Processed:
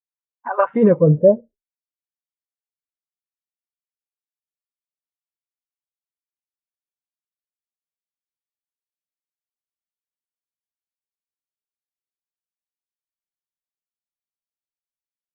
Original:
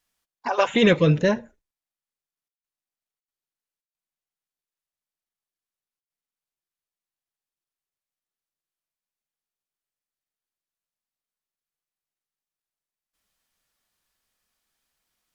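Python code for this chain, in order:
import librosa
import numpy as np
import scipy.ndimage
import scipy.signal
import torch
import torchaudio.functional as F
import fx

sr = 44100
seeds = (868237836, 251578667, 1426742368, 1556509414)

y = fx.filter_sweep_lowpass(x, sr, from_hz=1500.0, to_hz=160.0, start_s=0.64, end_s=2.26, q=2.1)
y = fx.spectral_expand(y, sr, expansion=1.5)
y = y * librosa.db_to_amplitude(1.5)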